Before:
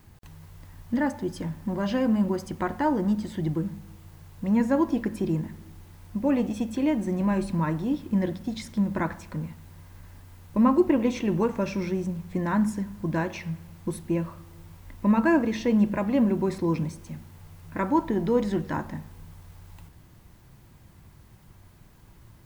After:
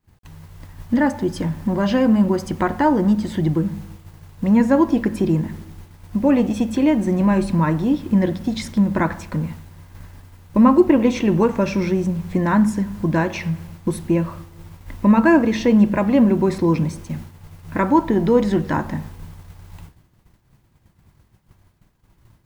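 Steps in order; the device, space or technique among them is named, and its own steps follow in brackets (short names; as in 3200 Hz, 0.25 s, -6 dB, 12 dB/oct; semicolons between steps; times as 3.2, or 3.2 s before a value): high shelf 8200 Hz -4 dB; expander -40 dBFS; parallel compression (in parallel at -1 dB: compressor, threshold -37 dBFS, peak gain reduction 20.5 dB); on the sum: gain +6.5 dB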